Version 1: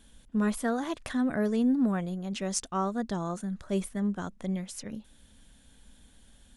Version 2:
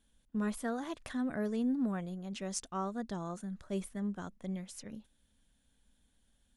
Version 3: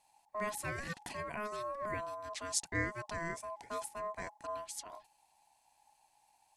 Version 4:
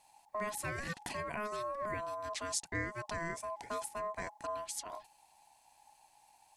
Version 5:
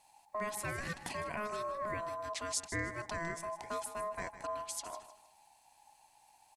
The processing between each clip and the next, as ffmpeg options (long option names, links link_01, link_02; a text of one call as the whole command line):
ffmpeg -i in.wav -af "agate=range=-8dB:threshold=-46dB:ratio=16:detection=peak,volume=-7dB" out.wav
ffmpeg -i in.wav -af "equalizer=frequency=125:width_type=o:width=1:gain=11,equalizer=frequency=250:width_type=o:width=1:gain=-9,equalizer=frequency=500:width_type=o:width=1:gain=-7,equalizer=frequency=1000:width_type=o:width=1:gain=10,equalizer=frequency=2000:width_type=o:width=1:gain=-5,equalizer=frequency=4000:width_type=o:width=1:gain=4,equalizer=frequency=8000:width_type=o:width=1:gain=7,aeval=exprs='val(0)*sin(2*PI*840*n/s)':channel_layout=same,volume=1.5dB" out.wav
ffmpeg -i in.wav -af "acompressor=threshold=-44dB:ratio=2,volume=5.5dB" out.wav
ffmpeg -i in.wav -af "aecho=1:1:155|310|465:0.224|0.0672|0.0201" out.wav